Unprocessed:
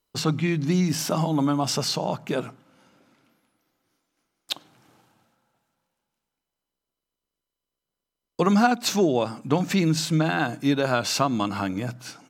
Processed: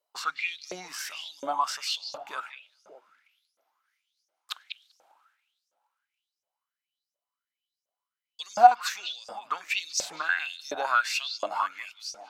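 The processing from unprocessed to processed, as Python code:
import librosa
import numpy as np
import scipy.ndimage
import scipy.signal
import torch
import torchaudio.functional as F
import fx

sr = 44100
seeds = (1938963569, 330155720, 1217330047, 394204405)

y = fx.echo_stepped(x, sr, ms=196, hz=2900.0, octaves=-1.4, feedback_pct=70, wet_db=-7.0)
y = fx.filter_lfo_highpass(y, sr, shape='saw_up', hz=1.4, low_hz=550.0, high_hz=6200.0, q=8.0)
y = y * librosa.db_to_amplitude(-8.5)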